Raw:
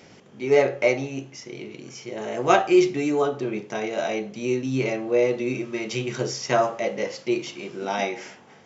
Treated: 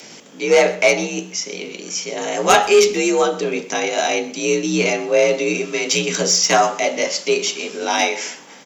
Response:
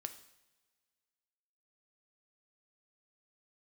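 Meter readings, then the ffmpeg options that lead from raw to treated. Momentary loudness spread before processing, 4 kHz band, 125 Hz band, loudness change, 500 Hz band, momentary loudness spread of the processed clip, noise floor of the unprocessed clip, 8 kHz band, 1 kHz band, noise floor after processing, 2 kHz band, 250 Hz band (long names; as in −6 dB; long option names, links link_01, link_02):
17 LU, +14.5 dB, +1.0 dB, +6.5 dB, +5.5 dB, 12 LU, −50 dBFS, can't be measured, +7.5 dB, −40 dBFS, +9.5 dB, +2.0 dB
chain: -af "afreqshift=51,crystalizer=i=4.5:c=0,asoftclip=type=tanh:threshold=-9.5dB,aecho=1:1:126:0.112,volume=5.5dB"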